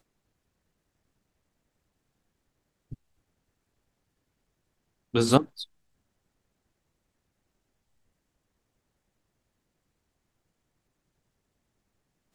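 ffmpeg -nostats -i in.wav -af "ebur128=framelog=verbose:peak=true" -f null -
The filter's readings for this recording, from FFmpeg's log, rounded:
Integrated loudness:
  I:         -24.7 LUFS
  Threshold: -38.0 LUFS
Loudness range:
  LRA:         8.1 LU
  Threshold: -54.4 LUFS
  LRA low:   -39.7 LUFS
  LRA high:  -31.6 LUFS
True peak:
  Peak:       -2.6 dBFS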